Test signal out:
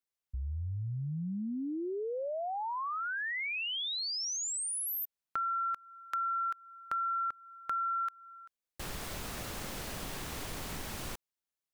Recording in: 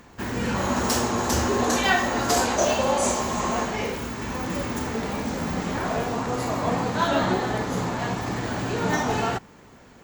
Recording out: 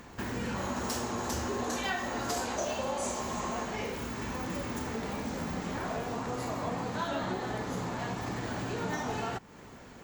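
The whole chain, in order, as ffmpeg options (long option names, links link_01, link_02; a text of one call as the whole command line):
ffmpeg -i in.wav -af "acompressor=threshold=-36dB:ratio=2.5" out.wav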